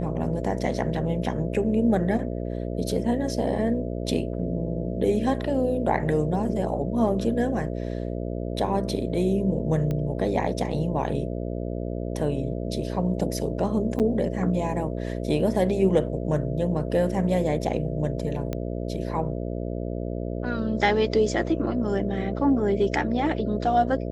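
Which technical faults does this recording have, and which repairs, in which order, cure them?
mains buzz 60 Hz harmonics 11 −30 dBFS
0:09.91: click −18 dBFS
0:13.99–0:14.00: drop-out 8.6 ms
0:18.53: click −16 dBFS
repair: click removal
hum removal 60 Hz, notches 11
repair the gap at 0:13.99, 8.6 ms

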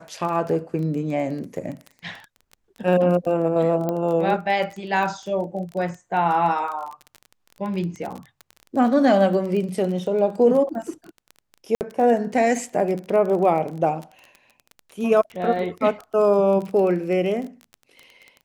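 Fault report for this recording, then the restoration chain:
surface crackle 21 per second −28 dBFS
0:03.89: click −13 dBFS
0:11.75–0:11.81: drop-out 59 ms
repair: click removal
repair the gap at 0:11.75, 59 ms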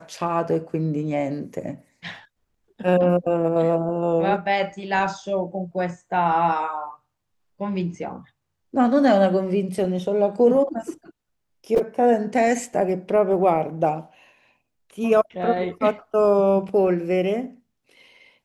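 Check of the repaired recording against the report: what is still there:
none of them is left

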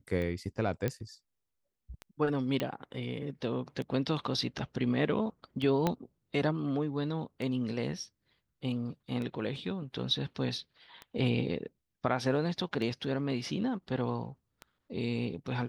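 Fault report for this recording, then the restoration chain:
scratch tick 33 1/3 rpm −26 dBFS
0:00.88: click −18 dBFS
0:02.60: click −18 dBFS
0:05.87: click −14 dBFS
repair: click removal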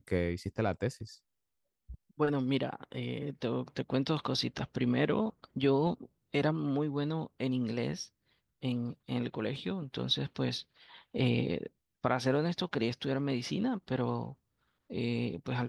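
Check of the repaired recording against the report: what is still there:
0:05.87: click

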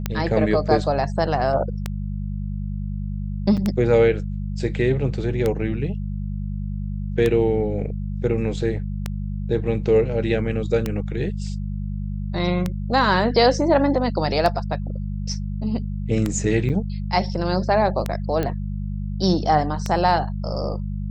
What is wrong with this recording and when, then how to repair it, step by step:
mains hum 50 Hz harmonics 4 −27 dBFS
scratch tick 33 1/3 rpm −9 dBFS
0:03.57–0:03.58: drop-out 6.4 ms
0:16.69–0:16.70: drop-out 7.9 ms
0:18.43: click −12 dBFS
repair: click removal
hum removal 50 Hz, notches 4
repair the gap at 0:03.57, 6.4 ms
repair the gap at 0:16.69, 7.9 ms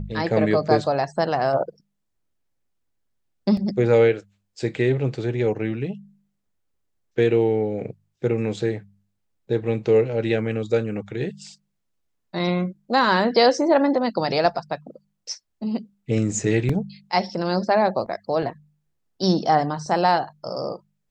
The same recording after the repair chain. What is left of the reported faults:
none of them is left

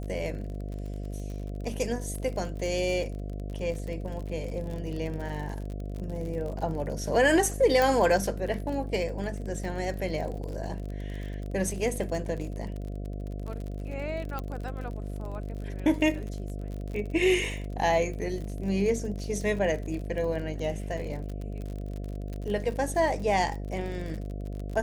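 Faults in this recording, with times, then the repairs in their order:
mains buzz 50 Hz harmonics 14 −35 dBFS
surface crackle 43 per second −35 dBFS
0:07.82: click
0:14.39: click −20 dBFS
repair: click removal
hum removal 50 Hz, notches 14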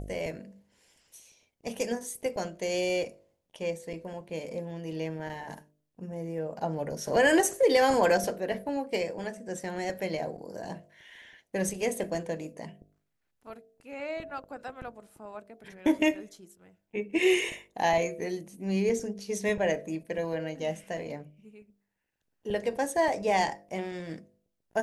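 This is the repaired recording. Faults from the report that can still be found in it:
0:14.39: click

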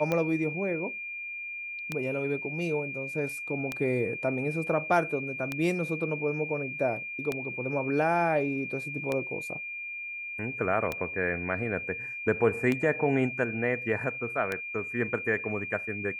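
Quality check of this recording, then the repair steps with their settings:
scratch tick 33 1/3 rpm −15 dBFS
whistle 2,400 Hz −35 dBFS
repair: click removal
notch filter 2,400 Hz, Q 30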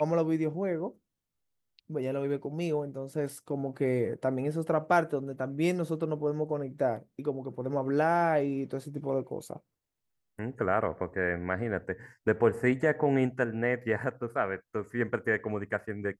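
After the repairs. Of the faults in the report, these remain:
none of them is left

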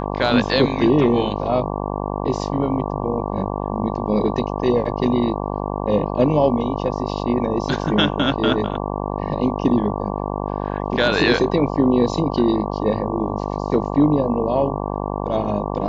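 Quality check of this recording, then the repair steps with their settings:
mains buzz 50 Hz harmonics 23 −25 dBFS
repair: hum removal 50 Hz, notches 23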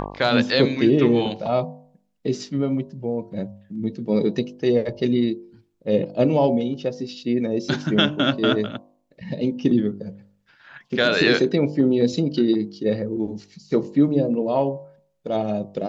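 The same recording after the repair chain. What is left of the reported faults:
none of them is left

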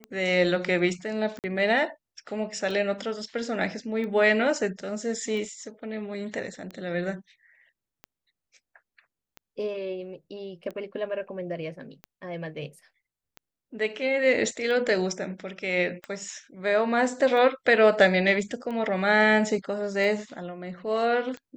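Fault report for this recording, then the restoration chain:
scratch tick 45 rpm −25 dBFS
0:01.39–0:01.44: drop-out 48 ms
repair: click removal
repair the gap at 0:01.39, 48 ms

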